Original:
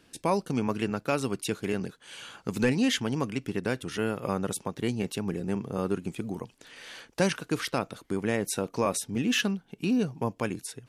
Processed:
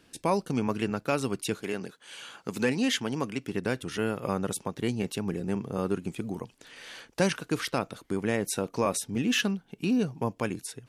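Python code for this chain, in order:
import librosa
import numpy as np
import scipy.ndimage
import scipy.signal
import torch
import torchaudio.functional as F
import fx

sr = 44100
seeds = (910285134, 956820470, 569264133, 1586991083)

y = fx.highpass(x, sr, hz=fx.line((1.61, 340.0), (3.51, 150.0)), slope=6, at=(1.61, 3.51), fade=0.02)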